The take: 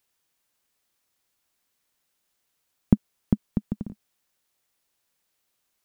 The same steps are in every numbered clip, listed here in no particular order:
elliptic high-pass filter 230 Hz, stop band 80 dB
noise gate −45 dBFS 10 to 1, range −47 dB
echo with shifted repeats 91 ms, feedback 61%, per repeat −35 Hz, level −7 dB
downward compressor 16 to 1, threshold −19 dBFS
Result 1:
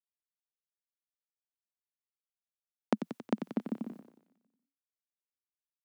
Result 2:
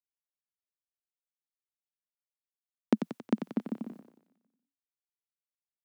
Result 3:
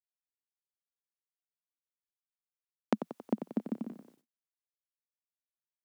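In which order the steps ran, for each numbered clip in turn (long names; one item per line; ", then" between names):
noise gate, then echo with shifted repeats, then downward compressor, then elliptic high-pass filter
noise gate, then echo with shifted repeats, then elliptic high-pass filter, then downward compressor
downward compressor, then echo with shifted repeats, then noise gate, then elliptic high-pass filter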